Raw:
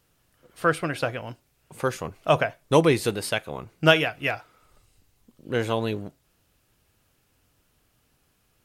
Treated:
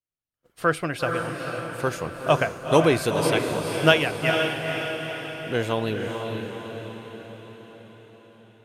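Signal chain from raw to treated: expander -48 dBFS; diffused feedback echo 0.473 s, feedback 57%, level -4.5 dB

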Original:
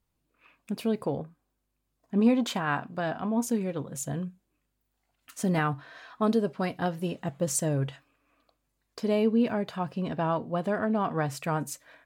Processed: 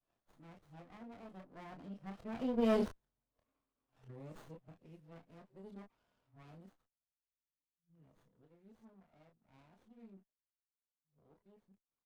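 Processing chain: whole clip reversed; Doppler pass-by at 2.8, 24 m/s, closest 3.4 m; early reflections 26 ms -5.5 dB, 36 ms -10.5 dB; running maximum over 17 samples; gain -3.5 dB

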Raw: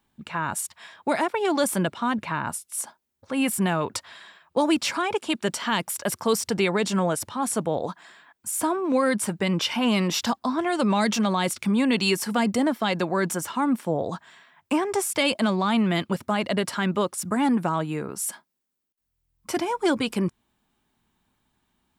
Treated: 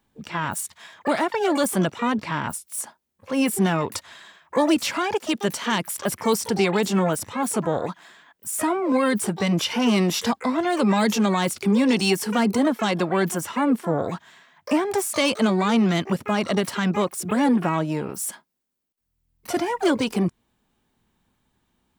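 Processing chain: harmoniser +12 st -10 dB; low shelf 430 Hz +3.5 dB

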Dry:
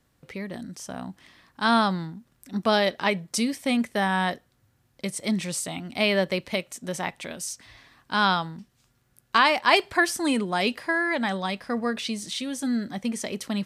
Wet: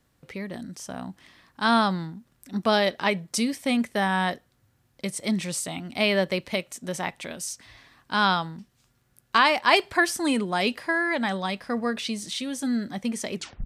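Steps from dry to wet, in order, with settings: tape stop at the end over 0.31 s

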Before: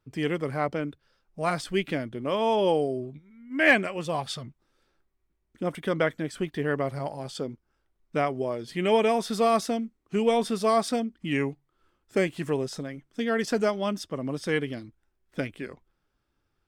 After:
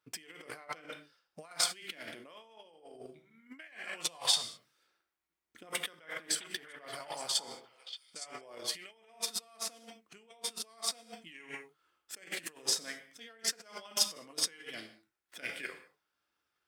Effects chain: high shelf 4900 Hz -10 dB; non-linear reverb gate 0.24 s falling, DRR 4 dB; negative-ratio compressor -36 dBFS, ratio -1; differentiator; 5.82–8.41 delay with a stepping band-pass 0.288 s, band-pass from 1000 Hz, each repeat 1.4 oct, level -4 dB; transient shaper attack +7 dB, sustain -1 dB; mismatched tape noise reduction decoder only; gain +6 dB

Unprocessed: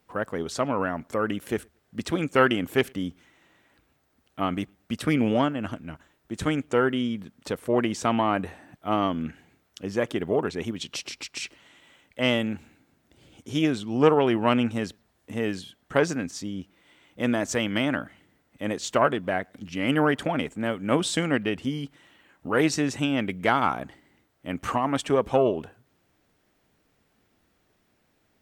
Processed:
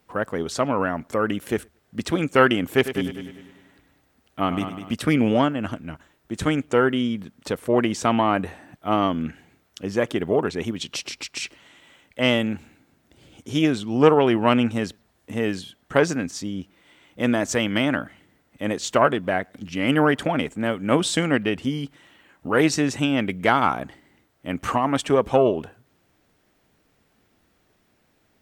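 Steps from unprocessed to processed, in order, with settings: 2.74–4.94 multi-head echo 0.1 s, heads first and second, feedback 41%, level -12 dB; gain +3.5 dB

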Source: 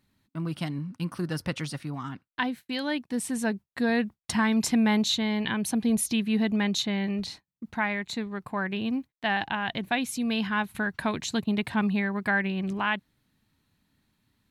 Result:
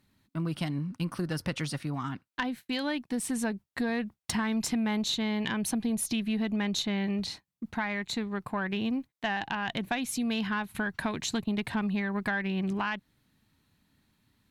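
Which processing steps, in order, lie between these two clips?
compressor 4:1, threshold -29 dBFS, peak gain reduction 8 dB; tube stage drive 19 dB, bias 0.3; gain +2.5 dB

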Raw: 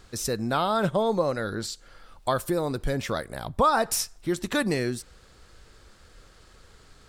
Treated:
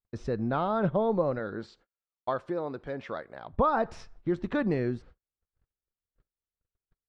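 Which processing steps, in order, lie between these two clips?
1.38–3.52 HPF 250 Hz -> 800 Hz 6 dB/oct; gate -45 dBFS, range -46 dB; tape spacing loss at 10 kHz 43 dB

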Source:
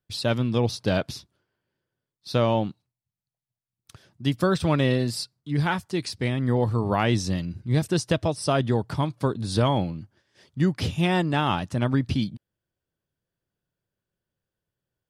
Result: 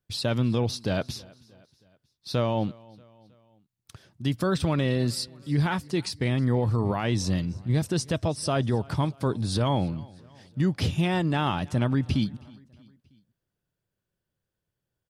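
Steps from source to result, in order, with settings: limiter -17 dBFS, peak gain reduction 7.5 dB; low shelf 150 Hz +3 dB; on a send: feedback echo 0.317 s, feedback 52%, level -24 dB

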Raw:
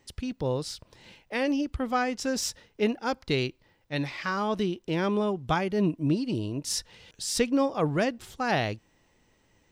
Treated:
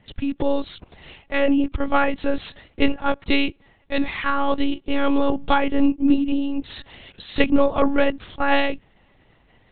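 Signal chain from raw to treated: monotone LPC vocoder at 8 kHz 280 Hz; gain +9 dB

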